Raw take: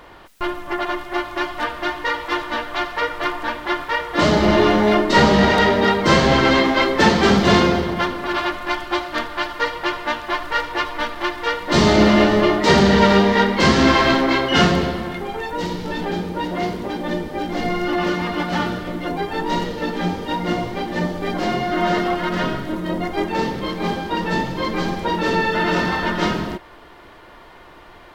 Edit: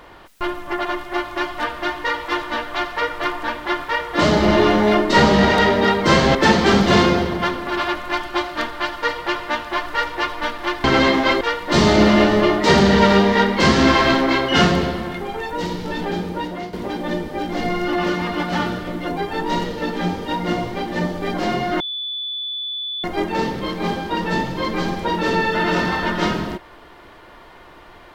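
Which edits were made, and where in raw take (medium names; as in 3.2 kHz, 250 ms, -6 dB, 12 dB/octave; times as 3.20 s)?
6.35–6.92 s: move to 11.41 s
16.34–16.73 s: fade out, to -12 dB
21.80–23.04 s: bleep 3.47 kHz -24 dBFS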